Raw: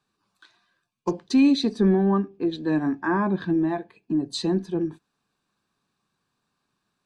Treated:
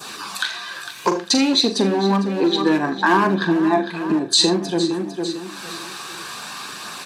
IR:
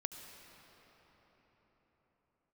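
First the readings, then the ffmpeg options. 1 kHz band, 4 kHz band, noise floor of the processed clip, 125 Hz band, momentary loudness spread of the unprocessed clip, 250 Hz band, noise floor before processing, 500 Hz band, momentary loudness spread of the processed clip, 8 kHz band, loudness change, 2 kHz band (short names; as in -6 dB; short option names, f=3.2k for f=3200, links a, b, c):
+10.5 dB, +16.0 dB, -35 dBFS, +1.5 dB, 11 LU, +3.0 dB, -78 dBFS, +6.0 dB, 15 LU, n/a, +5.0 dB, +12.0 dB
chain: -filter_complex "[0:a]acompressor=mode=upward:threshold=-33dB:ratio=2.5,aeval=exprs='clip(val(0),-1,0.106)':c=same,aecho=1:1:453|906|1359:0.224|0.0784|0.0274,aresample=32000,aresample=44100,acompressor=threshold=-27dB:ratio=10,flanger=delay=0.1:depth=2.4:regen=-62:speed=0.58:shape=triangular,adynamicequalizer=threshold=0.00141:dfrequency=1900:dqfactor=0.77:tfrequency=1900:tqfactor=0.77:attack=5:release=100:ratio=0.375:range=2.5:mode=cutabove:tftype=bell,highpass=f=1.1k:p=1,asplit=2[a][b];[b]adelay=41,volume=-11dB[c];[a][c]amix=inputs=2:normalize=0[d];[1:a]atrim=start_sample=2205,atrim=end_sample=3969[e];[d][e]afir=irnorm=-1:irlink=0,alimiter=level_in=34dB:limit=-1dB:release=50:level=0:latency=1,volume=-4dB"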